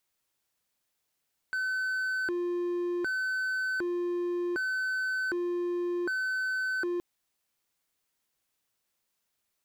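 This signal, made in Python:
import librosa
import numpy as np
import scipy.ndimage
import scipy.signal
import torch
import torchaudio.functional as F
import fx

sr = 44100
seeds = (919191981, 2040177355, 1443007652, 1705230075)

y = fx.siren(sr, length_s=5.47, kind='hi-lo', low_hz=351.0, high_hz=1520.0, per_s=0.66, wave='triangle', level_db=-26.0)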